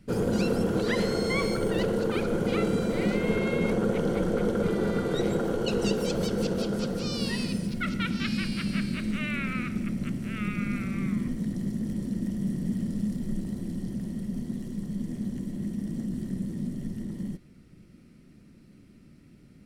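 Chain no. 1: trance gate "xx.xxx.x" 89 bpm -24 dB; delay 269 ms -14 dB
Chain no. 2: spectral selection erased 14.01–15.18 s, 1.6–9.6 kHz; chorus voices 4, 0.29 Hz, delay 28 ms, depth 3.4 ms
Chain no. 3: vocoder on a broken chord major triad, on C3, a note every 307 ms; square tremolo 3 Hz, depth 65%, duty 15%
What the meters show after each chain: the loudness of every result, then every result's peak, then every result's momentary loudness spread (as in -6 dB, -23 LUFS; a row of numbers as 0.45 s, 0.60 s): -30.5 LUFS, -32.0 LUFS, -36.5 LUFS; -12.5 dBFS, -16.0 dBFS, -15.5 dBFS; 8 LU, 8 LU, 9 LU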